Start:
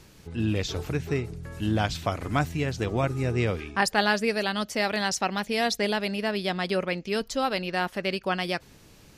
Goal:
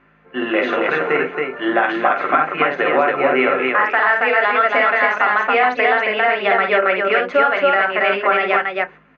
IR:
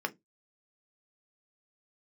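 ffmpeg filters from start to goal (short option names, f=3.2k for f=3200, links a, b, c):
-filter_complex "[0:a]highpass=f=970:p=1,aemphasis=mode=production:type=bsi,agate=range=-16dB:threshold=-44dB:ratio=16:detection=peak,lowpass=f=1.8k:w=0.5412,lowpass=f=1.8k:w=1.3066,acompressor=threshold=-36dB:ratio=5,aeval=exprs='val(0)+0.000355*(sin(2*PI*50*n/s)+sin(2*PI*2*50*n/s)/2+sin(2*PI*3*50*n/s)/3+sin(2*PI*4*50*n/s)/4+sin(2*PI*5*50*n/s)/5)':c=same,asetrate=46722,aresample=44100,atempo=0.943874,aecho=1:1:51|275:0.531|0.708[a];[1:a]atrim=start_sample=2205,asetrate=52920,aresample=44100[b];[a][b]afir=irnorm=-1:irlink=0,alimiter=level_in=23dB:limit=-1dB:release=50:level=0:latency=1,volume=-3.5dB"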